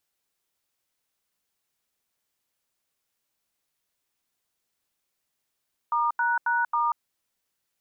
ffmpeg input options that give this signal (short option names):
-f lavfi -i "aevalsrc='0.0631*clip(min(mod(t,0.271),0.187-mod(t,0.271))/0.002,0,1)*(eq(floor(t/0.271),0)*(sin(2*PI*941*mod(t,0.271))+sin(2*PI*1209*mod(t,0.271)))+eq(floor(t/0.271),1)*(sin(2*PI*941*mod(t,0.271))+sin(2*PI*1477*mod(t,0.271)))+eq(floor(t/0.271),2)*(sin(2*PI*941*mod(t,0.271))+sin(2*PI*1477*mod(t,0.271)))+eq(floor(t/0.271),3)*(sin(2*PI*941*mod(t,0.271))+sin(2*PI*1209*mod(t,0.271))))':d=1.084:s=44100"